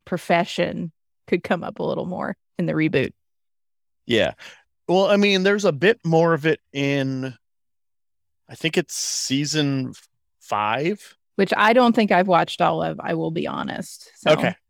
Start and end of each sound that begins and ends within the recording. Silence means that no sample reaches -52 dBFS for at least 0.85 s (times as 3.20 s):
4.07–7.37 s